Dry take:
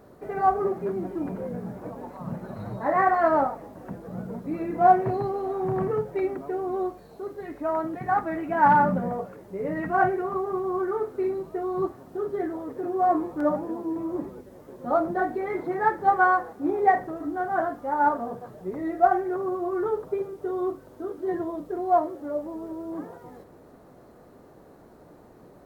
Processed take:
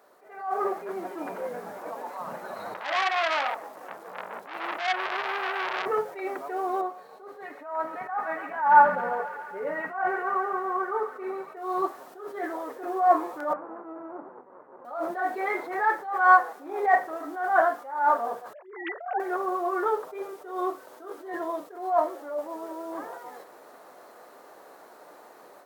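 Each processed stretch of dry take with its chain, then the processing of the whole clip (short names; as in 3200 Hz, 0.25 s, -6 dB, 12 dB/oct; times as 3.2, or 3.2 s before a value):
2.74–5.86 compressor, threshold -25 dBFS + core saturation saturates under 2200 Hz
6.81–11.57 high shelf 2500 Hz -11.5 dB + notch comb 340 Hz + thin delay 0.139 s, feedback 73%, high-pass 1800 Hz, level -7 dB
13.53–14.85 minimum comb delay 0.49 ms + LPF 1200 Hz 24 dB/oct + compressor 1.5:1, threshold -43 dBFS
18.53–19.2 sine-wave speech + negative-ratio compressor -22 dBFS, ratio -0.5 + high shelf 2400 Hz +8.5 dB
whole clip: HPF 750 Hz 12 dB/oct; AGC gain up to 9 dB; attack slew limiter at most 100 dB/s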